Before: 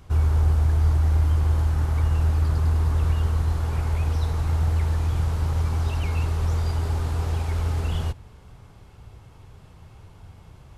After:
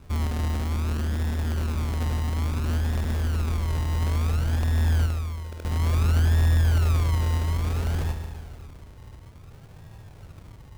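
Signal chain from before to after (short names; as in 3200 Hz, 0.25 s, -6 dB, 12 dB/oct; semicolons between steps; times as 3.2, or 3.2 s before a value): rattling part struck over -19 dBFS, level -18 dBFS; hard clip -23.5 dBFS, distortion -8 dB; 5.06–5.65 Chebyshev band-pass 2100–5600 Hz, order 5; vibrato 5.2 Hz 12 cents; on a send: dark delay 74 ms, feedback 80%, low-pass 3300 Hz, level -9.5 dB; on the sum: decimation with a swept rate 35×, swing 60% 0.58 Hz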